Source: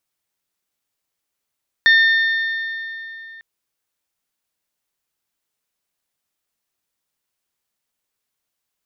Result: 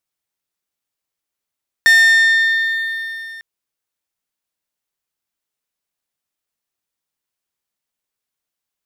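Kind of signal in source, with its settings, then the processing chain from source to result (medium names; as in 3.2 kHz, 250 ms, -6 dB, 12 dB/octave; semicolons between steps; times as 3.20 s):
metal hit bell, lowest mode 1.81 kHz, modes 4, decay 3.25 s, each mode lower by 9 dB, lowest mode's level -8.5 dB
waveshaping leveller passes 2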